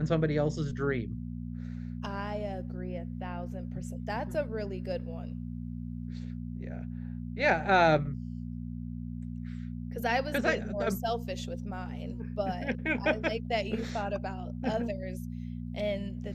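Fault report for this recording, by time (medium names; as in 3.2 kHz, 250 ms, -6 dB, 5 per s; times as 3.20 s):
hum 60 Hz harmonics 4 -38 dBFS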